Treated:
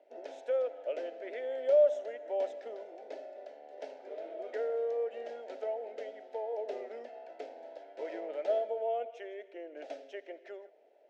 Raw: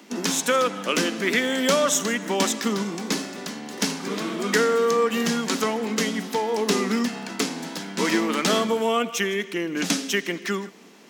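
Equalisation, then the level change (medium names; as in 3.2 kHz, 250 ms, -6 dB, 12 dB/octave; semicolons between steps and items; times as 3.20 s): ladder band-pass 660 Hz, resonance 75%; static phaser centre 460 Hz, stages 4; 0.0 dB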